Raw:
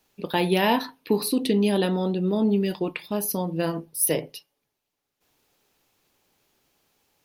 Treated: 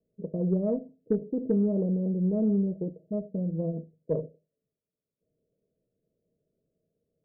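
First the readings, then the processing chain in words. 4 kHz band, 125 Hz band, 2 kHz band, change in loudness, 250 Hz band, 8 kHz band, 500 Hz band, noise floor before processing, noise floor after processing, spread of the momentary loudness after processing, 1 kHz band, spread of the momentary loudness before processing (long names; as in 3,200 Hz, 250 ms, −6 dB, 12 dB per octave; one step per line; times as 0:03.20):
below −40 dB, −1.0 dB, below −35 dB, −5.0 dB, −3.0 dB, below −40 dB, −5.5 dB, −82 dBFS, below −85 dBFS, 10 LU, below −20 dB, 7 LU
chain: Chebyshev low-pass with heavy ripple 660 Hz, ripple 9 dB
four-comb reverb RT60 0.31 s, combs from 26 ms, DRR 16 dB
harmonic generator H 4 −32 dB, 5 −43 dB, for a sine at −14 dBFS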